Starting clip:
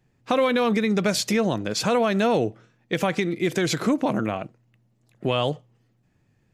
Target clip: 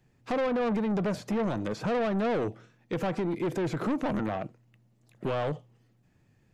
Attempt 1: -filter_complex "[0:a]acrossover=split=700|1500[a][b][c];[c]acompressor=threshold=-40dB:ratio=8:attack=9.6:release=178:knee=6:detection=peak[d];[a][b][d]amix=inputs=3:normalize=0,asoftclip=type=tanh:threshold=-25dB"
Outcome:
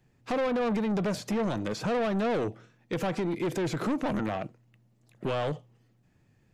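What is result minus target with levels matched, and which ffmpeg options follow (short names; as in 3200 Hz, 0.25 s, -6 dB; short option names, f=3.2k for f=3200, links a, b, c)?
compressor: peak gain reduction -6.5 dB
-filter_complex "[0:a]acrossover=split=700|1500[a][b][c];[c]acompressor=threshold=-47.5dB:ratio=8:attack=9.6:release=178:knee=6:detection=peak[d];[a][b][d]amix=inputs=3:normalize=0,asoftclip=type=tanh:threshold=-25dB"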